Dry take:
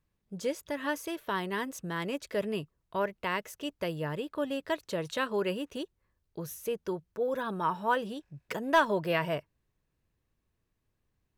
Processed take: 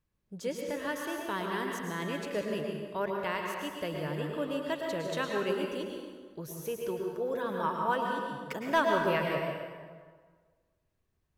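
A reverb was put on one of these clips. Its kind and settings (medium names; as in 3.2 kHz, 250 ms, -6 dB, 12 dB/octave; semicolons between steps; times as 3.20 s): plate-style reverb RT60 1.6 s, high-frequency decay 0.7×, pre-delay 95 ms, DRR 0.5 dB; trim -3 dB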